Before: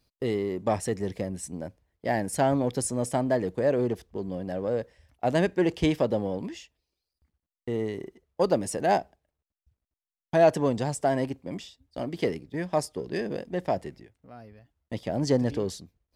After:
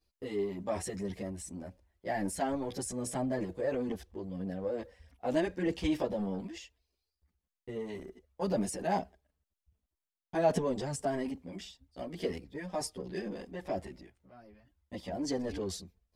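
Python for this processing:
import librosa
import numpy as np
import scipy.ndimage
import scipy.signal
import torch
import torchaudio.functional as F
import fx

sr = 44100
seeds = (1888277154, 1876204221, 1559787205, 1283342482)

y = fx.transient(x, sr, attack_db=1, sustain_db=7)
y = fx.chorus_voices(y, sr, voices=6, hz=0.41, base_ms=13, depth_ms=3.0, mix_pct=65)
y = F.gain(torch.from_numpy(y), -6.0).numpy()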